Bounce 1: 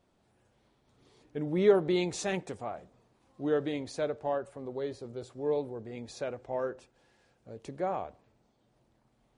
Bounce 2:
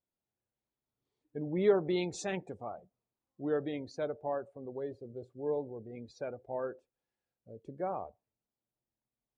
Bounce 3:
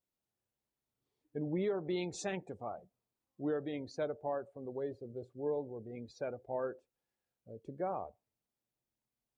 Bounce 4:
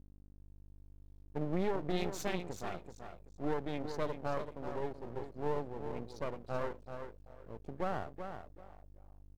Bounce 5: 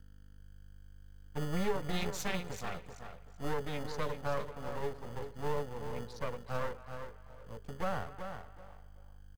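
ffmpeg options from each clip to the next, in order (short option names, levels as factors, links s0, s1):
-af "afftdn=nr=22:nf=-44,volume=0.668"
-af "alimiter=level_in=1.33:limit=0.0631:level=0:latency=1:release=387,volume=0.75"
-af "aeval=exprs='val(0)+0.00141*(sin(2*PI*50*n/s)+sin(2*PI*2*50*n/s)/2+sin(2*PI*3*50*n/s)/3+sin(2*PI*4*50*n/s)/4+sin(2*PI*5*50*n/s)/5)':c=same,aecho=1:1:382|764|1146:0.398|0.0916|0.0211,aeval=exprs='max(val(0),0)':c=same,volume=1.58"
-filter_complex "[0:a]acrossover=split=270|680|3900[s0][s1][s2][s3];[s0]acrusher=samples=28:mix=1:aa=0.000001[s4];[s1]asuperpass=centerf=490:order=20:qfactor=2.7[s5];[s2]aecho=1:1:251|502|753:0.15|0.0598|0.0239[s6];[s4][s5][s6][s3]amix=inputs=4:normalize=0,volume=1.5"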